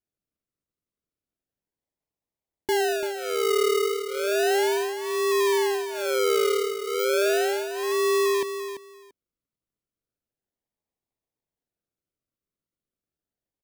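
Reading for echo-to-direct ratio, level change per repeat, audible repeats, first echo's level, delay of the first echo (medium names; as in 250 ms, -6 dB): -9.5 dB, -15.5 dB, 2, -9.5 dB, 340 ms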